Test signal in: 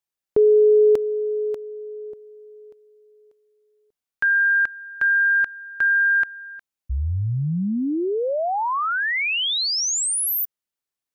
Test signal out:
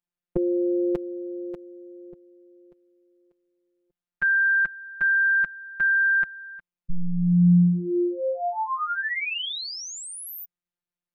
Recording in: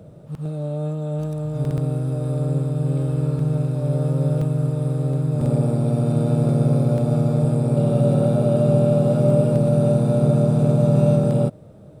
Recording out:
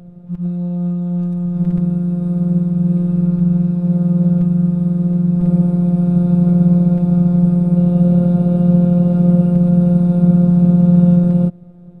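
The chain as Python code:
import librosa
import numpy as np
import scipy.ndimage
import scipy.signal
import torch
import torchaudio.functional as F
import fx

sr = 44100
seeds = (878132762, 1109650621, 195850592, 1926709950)

y = fx.bass_treble(x, sr, bass_db=12, treble_db=-11)
y = fx.robotise(y, sr, hz=176.0)
y = F.gain(torch.from_numpy(y), -1.5).numpy()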